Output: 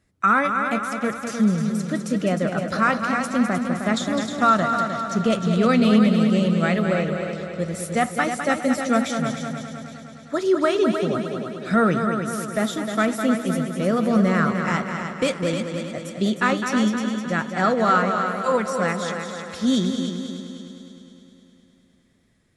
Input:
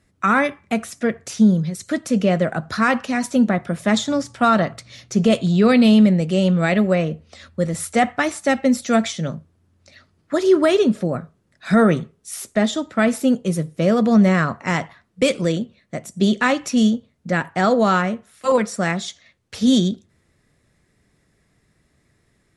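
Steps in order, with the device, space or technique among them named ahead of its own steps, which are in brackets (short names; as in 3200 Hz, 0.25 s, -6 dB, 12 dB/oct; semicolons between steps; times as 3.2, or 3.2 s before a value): dynamic EQ 1300 Hz, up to +7 dB, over -36 dBFS, Q 3.4; multi-head tape echo (multi-head echo 0.103 s, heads second and third, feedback 58%, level -7.5 dB; wow and flutter 15 cents); gain -5 dB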